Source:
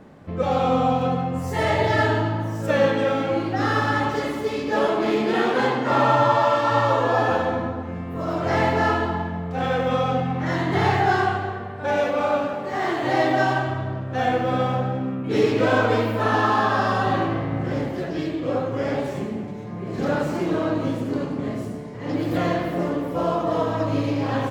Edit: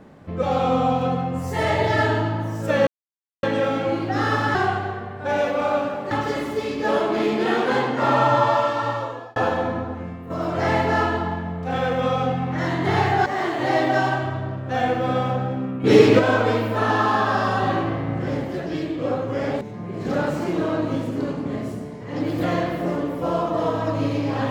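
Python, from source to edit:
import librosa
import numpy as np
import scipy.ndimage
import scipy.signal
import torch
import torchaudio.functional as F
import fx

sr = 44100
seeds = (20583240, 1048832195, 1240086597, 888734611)

y = fx.edit(x, sr, fx.insert_silence(at_s=2.87, length_s=0.56),
    fx.fade_out_span(start_s=6.4, length_s=0.84),
    fx.fade_out_to(start_s=7.87, length_s=0.31, floor_db=-7.5),
    fx.move(start_s=11.14, length_s=1.56, to_s=3.99),
    fx.clip_gain(start_s=15.28, length_s=0.35, db=7.0),
    fx.cut(start_s=19.05, length_s=0.49), tone=tone)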